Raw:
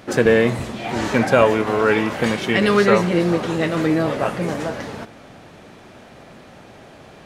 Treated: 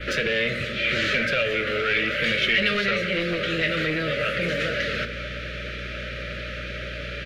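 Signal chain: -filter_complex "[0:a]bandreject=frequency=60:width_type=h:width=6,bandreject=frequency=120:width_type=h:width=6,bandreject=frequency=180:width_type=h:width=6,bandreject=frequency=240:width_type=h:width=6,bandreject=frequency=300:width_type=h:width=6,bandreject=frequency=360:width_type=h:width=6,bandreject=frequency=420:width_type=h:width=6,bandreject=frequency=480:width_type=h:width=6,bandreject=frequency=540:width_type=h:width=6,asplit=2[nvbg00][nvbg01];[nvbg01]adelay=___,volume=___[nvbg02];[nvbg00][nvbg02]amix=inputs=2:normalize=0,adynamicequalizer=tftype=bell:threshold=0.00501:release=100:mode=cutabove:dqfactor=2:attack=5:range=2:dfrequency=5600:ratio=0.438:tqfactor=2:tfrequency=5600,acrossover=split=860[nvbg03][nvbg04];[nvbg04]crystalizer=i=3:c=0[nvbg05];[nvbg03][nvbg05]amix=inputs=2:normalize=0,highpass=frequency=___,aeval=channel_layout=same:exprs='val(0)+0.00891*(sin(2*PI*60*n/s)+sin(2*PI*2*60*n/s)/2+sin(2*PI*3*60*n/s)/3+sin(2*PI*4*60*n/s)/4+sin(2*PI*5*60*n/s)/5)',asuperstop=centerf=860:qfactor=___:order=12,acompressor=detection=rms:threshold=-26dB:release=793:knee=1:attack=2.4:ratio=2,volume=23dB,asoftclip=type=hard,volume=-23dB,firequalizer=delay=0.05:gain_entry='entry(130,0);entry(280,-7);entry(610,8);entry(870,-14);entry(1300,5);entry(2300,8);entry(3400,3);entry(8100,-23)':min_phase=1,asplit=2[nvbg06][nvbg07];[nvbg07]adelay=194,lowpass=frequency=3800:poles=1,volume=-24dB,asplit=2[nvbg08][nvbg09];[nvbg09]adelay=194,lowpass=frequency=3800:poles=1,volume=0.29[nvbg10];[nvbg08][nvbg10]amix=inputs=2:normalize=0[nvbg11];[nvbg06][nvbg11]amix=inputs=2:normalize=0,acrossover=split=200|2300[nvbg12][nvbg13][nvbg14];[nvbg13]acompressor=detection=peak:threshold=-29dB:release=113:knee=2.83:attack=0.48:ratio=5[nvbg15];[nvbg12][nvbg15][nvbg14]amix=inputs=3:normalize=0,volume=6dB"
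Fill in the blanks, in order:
21, -13.5dB, 110, 1.4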